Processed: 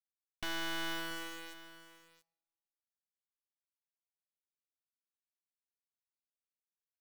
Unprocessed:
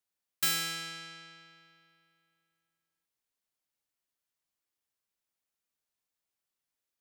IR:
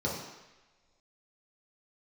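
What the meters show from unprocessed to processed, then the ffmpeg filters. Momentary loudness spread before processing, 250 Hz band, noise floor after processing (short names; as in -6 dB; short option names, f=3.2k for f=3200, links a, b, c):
18 LU, +5.0 dB, under -85 dBFS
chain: -filter_complex "[0:a]lowpass=1.3k,bandreject=f=50:t=h:w=6,bandreject=f=100:t=h:w=6,bandreject=f=150:t=h:w=6,asplit=2[a][b];[b]acompressor=threshold=-56dB:ratio=6,volume=-2.5dB[c];[a][c]amix=inputs=2:normalize=0,alimiter=level_in=14.5dB:limit=-24dB:level=0:latency=1,volume=-14.5dB,aeval=exprs='abs(val(0))':c=same,aeval=exprs='0.0119*(cos(1*acos(clip(val(0)/0.0119,-1,1)))-cos(1*PI/2))+0.00422*(cos(2*acos(clip(val(0)/0.0119,-1,1)))-cos(2*PI/2))+0.000188*(cos(3*acos(clip(val(0)/0.0119,-1,1)))-cos(3*PI/2))+0.00119*(cos(7*acos(clip(val(0)/0.0119,-1,1)))-cos(7*PI/2))':c=same,acrusher=bits=8:mix=0:aa=0.000001,asoftclip=type=tanh:threshold=-36dB,aecho=1:1:683:0.178,asplit=2[d][e];[1:a]atrim=start_sample=2205,adelay=17[f];[e][f]afir=irnorm=-1:irlink=0,volume=-27.5dB[g];[d][g]amix=inputs=2:normalize=0,volume=9.5dB"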